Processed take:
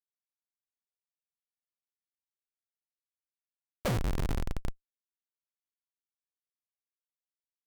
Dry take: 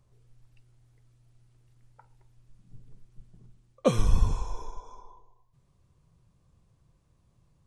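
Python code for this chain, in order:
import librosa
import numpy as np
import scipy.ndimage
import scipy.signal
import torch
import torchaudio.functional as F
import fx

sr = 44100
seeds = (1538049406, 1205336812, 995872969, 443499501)

y = fx.dmg_buzz(x, sr, base_hz=120.0, harmonics=20, level_db=-47.0, tilt_db=-1, odd_only=False)
y = fx.cheby_harmonics(y, sr, harmonics=(5, 8), levels_db=(-30, -38), full_scale_db=-9.0)
y = fx.schmitt(y, sr, flips_db=-26.5)
y = y * 10.0 ** (4.0 / 20.0)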